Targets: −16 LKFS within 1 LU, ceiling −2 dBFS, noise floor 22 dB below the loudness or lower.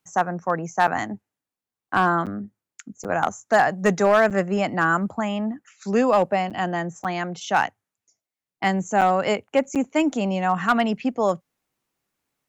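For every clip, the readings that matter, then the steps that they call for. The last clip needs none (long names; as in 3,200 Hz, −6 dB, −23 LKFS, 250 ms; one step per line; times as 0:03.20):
share of clipped samples 0.6%; peaks flattened at −10.0 dBFS; number of dropouts 8; longest dropout 7.5 ms; integrated loudness −22.5 LKFS; sample peak −10.0 dBFS; target loudness −16.0 LKFS
→ clipped peaks rebuilt −10 dBFS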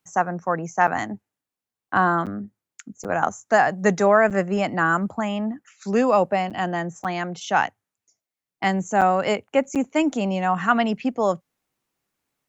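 share of clipped samples 0.0%; number of dropouts 8; longest dropout 7.5 ms
→ repair the gap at 0:00.87/0:02.26/0:03.04/0:04.30/0:06.50/0:07.04/0:09.01/0:09.75, 7.5 ms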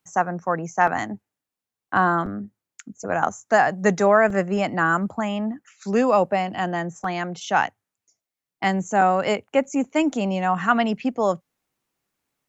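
number of dropouts 0; integrated loudness −22.5 LKFS; sample peak −4.5 dBFS; target loudness −16.0 LKFS
→ level +6.5 dB
brickwall limiter −2 dBFS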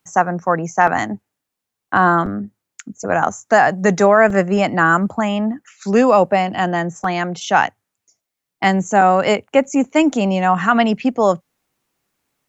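integrated loudness −16.5 LKFS; sample peak −2.0 dBFS; background noise floor −82 dBFS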